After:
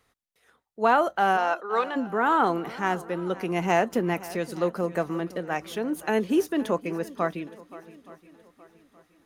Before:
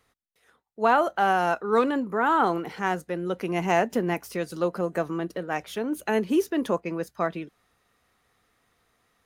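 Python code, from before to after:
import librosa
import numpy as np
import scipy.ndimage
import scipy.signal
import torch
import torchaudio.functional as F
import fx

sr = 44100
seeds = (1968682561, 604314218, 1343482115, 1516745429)

y = fx.bandpass_edges(x, sr, low_hz=fx.line((1.36, 430.0), (1.95, 690.0)), high_hz=5800.0, at=(1.36, 1.95), fade=0.02)
y = fx.echo_swing(y, sr, ms=871, ratio=1.5, feedback_pct=33, wet_db=-18)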